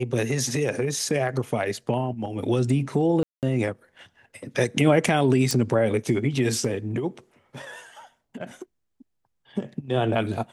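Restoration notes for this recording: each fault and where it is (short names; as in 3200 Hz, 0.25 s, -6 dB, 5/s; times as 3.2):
3.23–3.43 gap 0.198 s
5.51 pop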